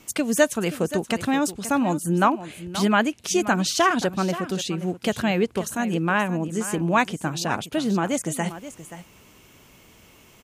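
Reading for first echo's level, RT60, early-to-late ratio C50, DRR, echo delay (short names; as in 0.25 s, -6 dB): -13.5 dB, none, none, none, 0.528 s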